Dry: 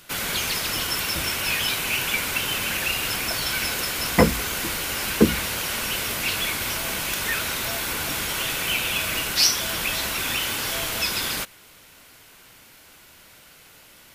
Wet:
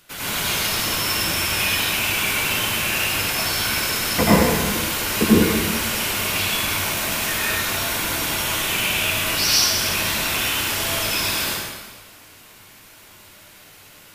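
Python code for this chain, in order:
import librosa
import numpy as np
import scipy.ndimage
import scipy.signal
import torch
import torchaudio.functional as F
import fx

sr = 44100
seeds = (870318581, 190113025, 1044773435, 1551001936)

y = fx.rev_plate(x, sr, seeds[0], rt60_s=1.4, hf_ratio=0.9, predelay_ms=75, drr_db=-9.0)
y = F.gain(torch.from_numpy(y), -5.5).numpy()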